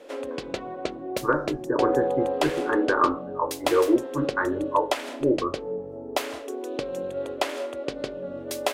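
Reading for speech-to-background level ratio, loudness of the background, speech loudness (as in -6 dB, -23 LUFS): 5.0 dB, -31.0 LUFS, -26.0 LUFS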